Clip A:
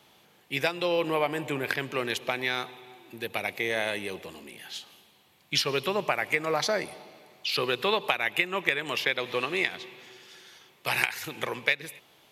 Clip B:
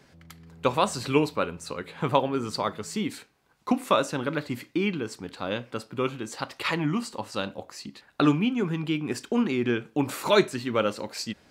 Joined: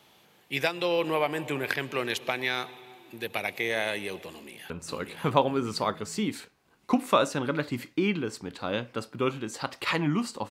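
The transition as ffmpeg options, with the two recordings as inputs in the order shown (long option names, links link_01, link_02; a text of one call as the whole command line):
ffmpeg -i cue0.wav -i cue1.wav -filter_complex "[0:a]apad=whole_dur=10.5,atrim=end=10.5,atrim=end=4.702[link_01];[1:a]atrim=start=1.478:end=7.28[link_02];[link_01][link_02]acrossfade=duration=0.004:curve1=hsin:curve2=hsin,asplit=2[link_03][link_04];[link_04]afade=type=in:start_time=4.29:duration=0.01,afade=type=out:start_time=4.7:duration=0.01,aecho=0:1:590|1180|1770|2360|2950:0.841395|0.336558|0.134623|0.0538493|0.0215397[link_05];[link_03][link_05]amix=inputs=2:normalize=0" out.wav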